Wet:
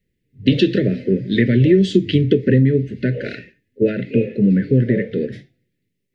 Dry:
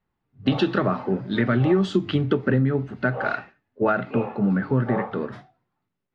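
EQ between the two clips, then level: elliptic band-stop 500–1900 Hz, stop band 50 dB; +7.5 dB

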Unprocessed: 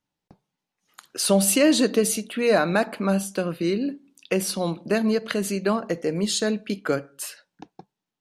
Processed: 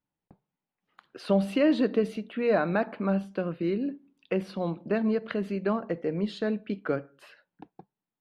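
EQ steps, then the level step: air absorption 400 m; -3.5 dB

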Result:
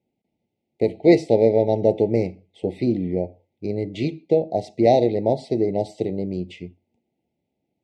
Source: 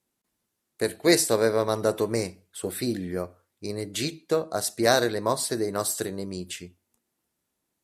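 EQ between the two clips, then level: HPF 79 Hz; Chebyshev band-stop 870–2000 Hz, order 5; tape spacing loss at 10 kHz 42 dB; +9.0 dB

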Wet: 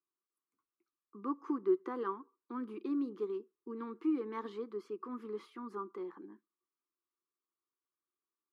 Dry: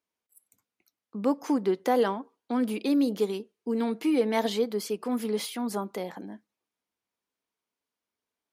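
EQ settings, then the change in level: double band-pass 640 Hz, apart 1.7 oct; 0.0 dB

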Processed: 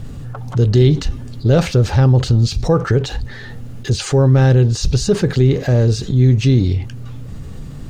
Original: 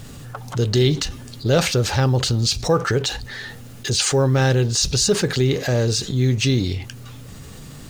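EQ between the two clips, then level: tilt -2.5 dB/oct; 0.0 dB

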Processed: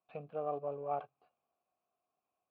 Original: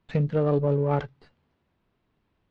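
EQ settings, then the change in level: vowel filter a; air absorption 160 m; 0.0 dB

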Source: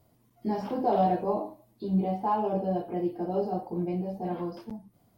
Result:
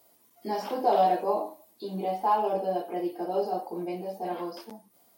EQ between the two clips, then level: HPF 400 Hz 12 dB/oct; high shelf 4000 Hz +10 dB; +3.0 dB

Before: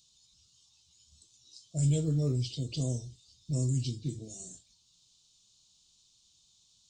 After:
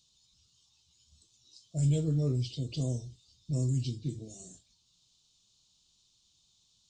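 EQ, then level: high shelf 6200 Hz -8.5 dB; 0.0 dB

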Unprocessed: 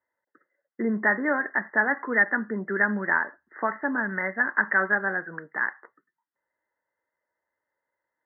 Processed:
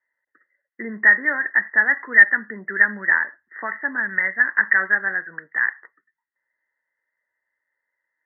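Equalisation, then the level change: synth low-pass 1900 Hz, resonance Q 8.6; -6.5 dB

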